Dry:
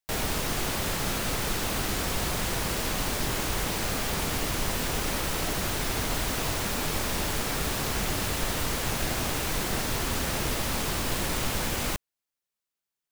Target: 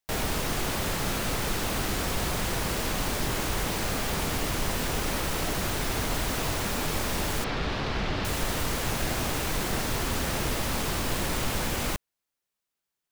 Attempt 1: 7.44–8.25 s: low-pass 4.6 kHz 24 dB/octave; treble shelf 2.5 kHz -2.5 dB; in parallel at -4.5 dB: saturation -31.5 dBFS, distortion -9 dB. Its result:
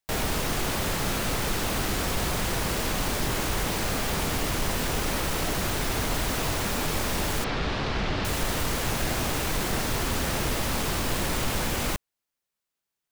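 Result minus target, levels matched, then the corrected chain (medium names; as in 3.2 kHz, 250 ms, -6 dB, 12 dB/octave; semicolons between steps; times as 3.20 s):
saturation: distortion -5 dB
7.44–8.25 s: low-pass 4.6 kHz 24 dB/octave; treble shelf 2.5 kHz -2.5 dB; in parallel at -4.5 dB: saturation -42 dBFS, distortion -5 dB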